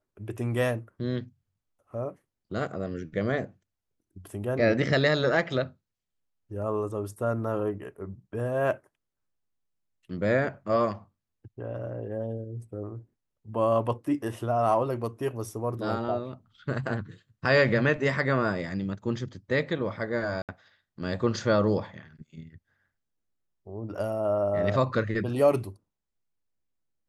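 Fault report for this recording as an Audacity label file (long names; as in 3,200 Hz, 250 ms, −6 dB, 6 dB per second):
20.420000	20.490000	drop-out 67 ms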